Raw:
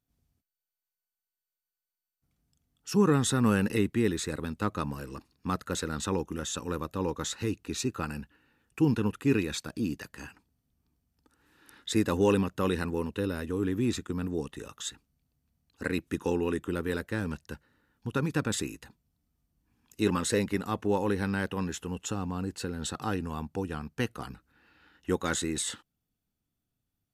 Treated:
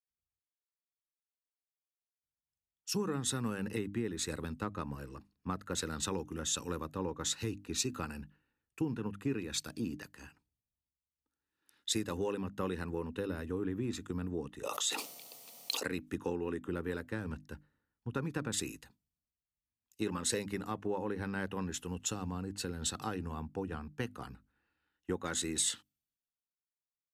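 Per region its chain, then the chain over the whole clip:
14.63–15.84 s: resonant high-pass 560 Hz, resonance Q 1.8 + peaking EQ 1.6 kHz -14 dB 0.32 oct + level flattener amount 100%
whole clip: hum notches 50/100/150/200/250/300 Hz; compression 10:1, threshold -30 dBFS; three bands expanded up and down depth 70%; trim -2 dB

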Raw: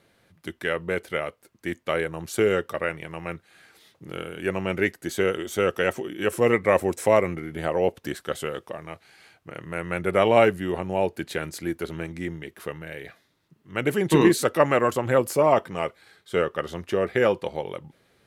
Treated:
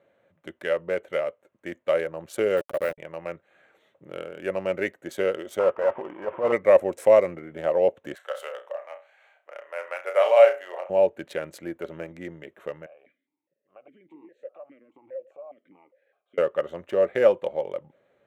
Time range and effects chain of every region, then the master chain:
2.57–2.98 s: send-on-delta sampling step -28.5 dBFS + peaking EQ 5.9 kHz -14 dB 0.29 oct
5.59–6.52 s: CVSD coder 16 kbps + peaking EQ 970 Hz +14.5 dB 0.58 oct + transient shaper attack -10 dB, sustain 0 dB
8.15–10.90 s: high-pass 610 Hz 24 dB/octave + flutter echo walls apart 5.7 m, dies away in 0.3 s
12.86–16.38 s: compression 12:1, threshold -32 dBFS + stepped vowel filter 4.9 Hz
whole clip: local Wiener filter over 9 samples; high-pass 230 Hz 6 dB/octave; peaking EQ 570 Hz +13.5 dB 0.36 oct; trim -4.5 dB

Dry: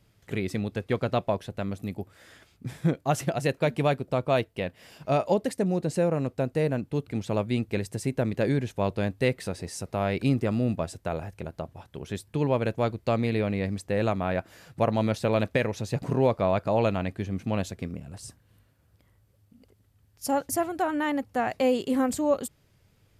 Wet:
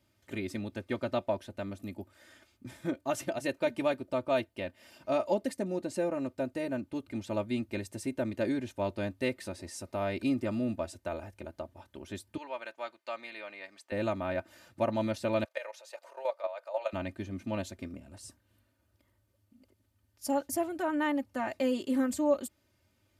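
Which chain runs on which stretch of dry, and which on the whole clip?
12.37–13.92 s: high-pass 950 Hz + treble shelf 6.2 kHz -10.5 dB
15.44–16.93 s: elliptic high-pass 520 Hz, stop band 60 dB + level held to a coarse grid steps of 12 dB
whole clip: high-pass 79 Hz; comb 3.3 ms, depth 83%; trim -7.5 dB

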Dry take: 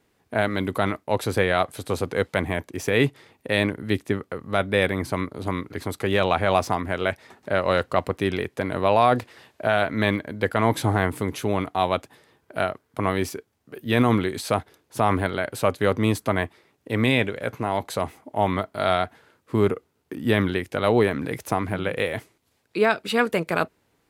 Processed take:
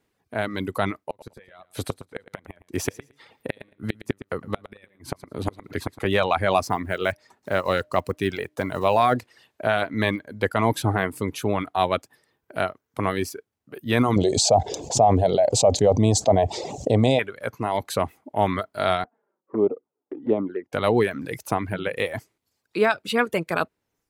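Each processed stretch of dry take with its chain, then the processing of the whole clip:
0.97–6.05 s: inverted gate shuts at -14 dBFS, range -30 dB + feedback delay 112 ms, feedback 27%, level -10 dB
6.70–9.16 s: block-companded coder 7-bit + de-hum 304.3 Hz, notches 2
14.16–17.19 s: FFT filter 120 Hz 0 dB, 330 Hz -5 dB, 720 Hz +9 dB, 1.4 kHz -24 dB, 4.4 kHz -2 dB, 7.3 kHz +5 dB, 11 kHz -26 dB + level flattener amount 70%
19.04–20.73 s: Butterworth band-pass 490 Hz, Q 0.65 + touch-sensitive flanger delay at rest 5.6 ms, full sweep at -20.5 dBFS
whole clip: reverb removal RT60 0.83 s; level rider; trim -5.5 dB

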